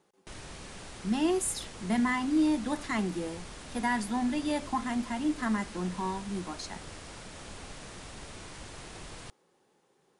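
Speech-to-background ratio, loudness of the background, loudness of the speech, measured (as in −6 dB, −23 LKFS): 13.5 dB, −45.0 LKFS, −31.5 LKFS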